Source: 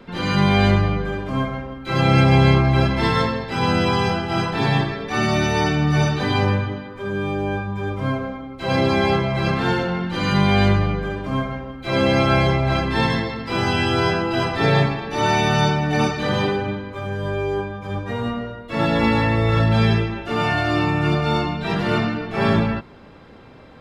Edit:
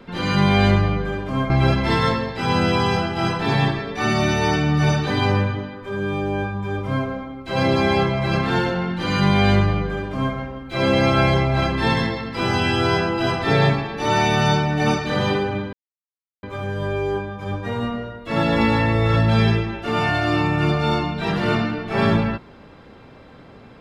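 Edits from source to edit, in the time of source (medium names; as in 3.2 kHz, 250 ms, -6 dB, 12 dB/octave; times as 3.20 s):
1.50–2.63 s: delete
16.86 s: insert silence 0.70 s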